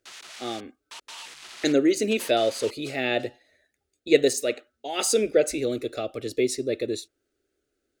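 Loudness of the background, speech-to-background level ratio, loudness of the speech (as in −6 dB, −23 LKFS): −42.0 LKFS, 16.5 dB, −25.5 LKFS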